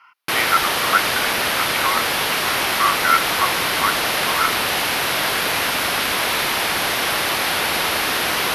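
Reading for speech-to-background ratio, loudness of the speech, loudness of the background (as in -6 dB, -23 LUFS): -4.5 dB, -23.0 LUFS, -18.5 LUFS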